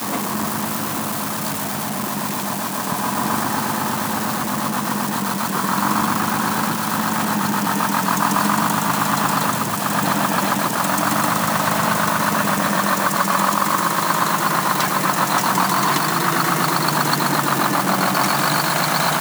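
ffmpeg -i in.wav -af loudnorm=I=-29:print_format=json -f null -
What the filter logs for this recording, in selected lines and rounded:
"input_i" : "-18.7",
"input_tp" : "-3.4",
"input_lra" : "4.0",
"input_thresh" : "-28.7",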